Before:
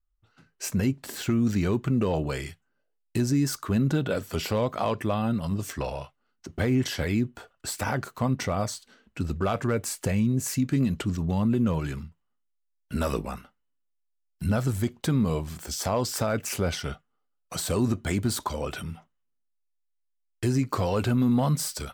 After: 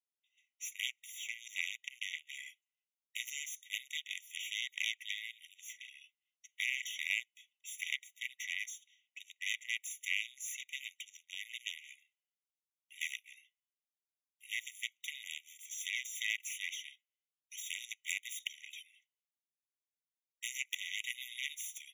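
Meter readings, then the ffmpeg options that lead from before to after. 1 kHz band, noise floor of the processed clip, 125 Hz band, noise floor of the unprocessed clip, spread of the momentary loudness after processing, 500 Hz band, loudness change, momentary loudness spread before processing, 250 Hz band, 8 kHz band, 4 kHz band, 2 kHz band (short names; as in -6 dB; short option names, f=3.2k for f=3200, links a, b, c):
under -40 dB, under -85 dBFS, under -40 dB, -75 dBFS, 15 LU, under -40 dB, -12.5 dB, 11 LU, under -40 dB, -7.5 dB, -2.5 dB, -0.5 dB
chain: -af "aeval=exprs='0.168*(cos(1*acos(clip(val(0)/0.168,-1,1)))-cos(1*PI/2))+0.0841*(cos(3*acos(clip(val(0)/0.168,-1,1)))-cos(3*PI/2))':c=same,afftfilt=real='re*eq(mod(floor(b*sr/1024/1900),2),1)':imag='im*eq(mod(floor(b*sr/1024/1900),2),1)':win_size=1024:overlap=0.75,volume=1.5dB"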